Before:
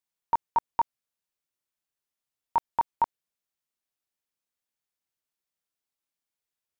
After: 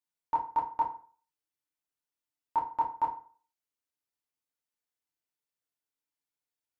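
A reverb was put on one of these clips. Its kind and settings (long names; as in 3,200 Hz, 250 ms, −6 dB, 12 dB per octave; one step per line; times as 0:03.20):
feedback delay network reverb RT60 0.43 s, low-frequency decay 0.95×, high-frequency decay 0.7×, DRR −2.5 dB
level −8.5 dB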